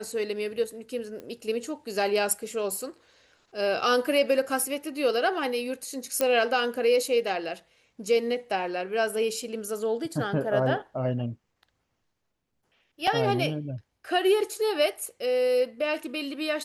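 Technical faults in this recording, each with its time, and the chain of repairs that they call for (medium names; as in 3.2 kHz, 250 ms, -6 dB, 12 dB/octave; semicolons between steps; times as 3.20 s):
1.20 s: pop -27 dBFS
6.21 s: pop -9 dBFS
13.07 s: dropout 4.2 ms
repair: de-click; interpolate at 13.07 s, 4.2 ms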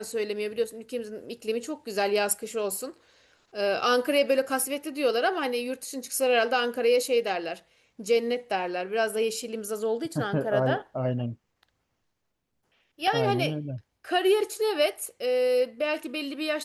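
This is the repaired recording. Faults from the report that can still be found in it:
nothing left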